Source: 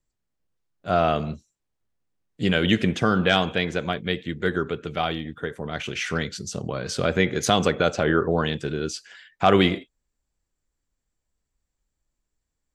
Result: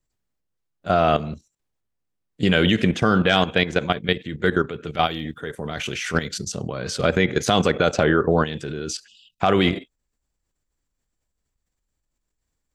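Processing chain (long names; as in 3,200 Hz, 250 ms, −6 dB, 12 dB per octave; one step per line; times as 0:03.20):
0:05.05–0:06.38: high-shelf EQ 4,900 Hz → 9,400 Hz +10 dB
0:09.07–0:09.40: time-frequency box erased 240–2,500 Hz
output level in coarse steps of 12 dB
level +7 dB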